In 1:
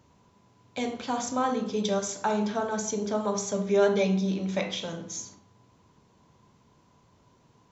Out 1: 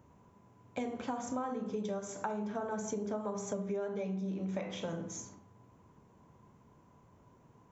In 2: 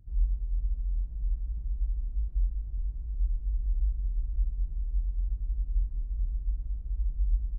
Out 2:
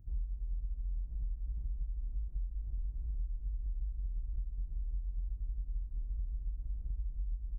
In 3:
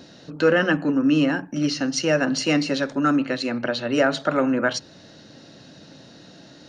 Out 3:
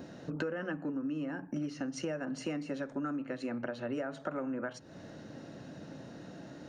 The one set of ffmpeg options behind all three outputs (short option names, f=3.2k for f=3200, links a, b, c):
-af "equalizer=f=4.3k:w=0.94:g=-14.5,acompressor=threshold=-33dB:ratio=16"